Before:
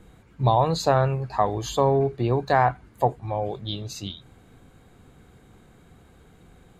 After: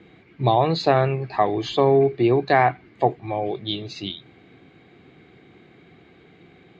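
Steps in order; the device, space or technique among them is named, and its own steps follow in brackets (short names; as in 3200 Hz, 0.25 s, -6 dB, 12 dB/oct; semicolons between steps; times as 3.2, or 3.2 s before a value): kitchen radio (speaker cabinet 170–4300 Hz, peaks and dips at 220 Hz -4 dB, 350 Hz +5 dB, 530 Hz -6 dB, 950 Hz -8 dB, 1400 Hz -6 dB, 2200 Hz +7 dB); gain +5.5 dB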